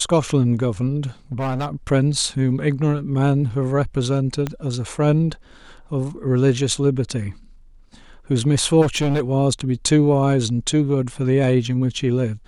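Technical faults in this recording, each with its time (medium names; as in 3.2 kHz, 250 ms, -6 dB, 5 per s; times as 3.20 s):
1.32–1.75 s: clipped -20 dBFS
4.47 s: pop -11 dBFS
8.81–9.21 s: clipped -15.5 dBFS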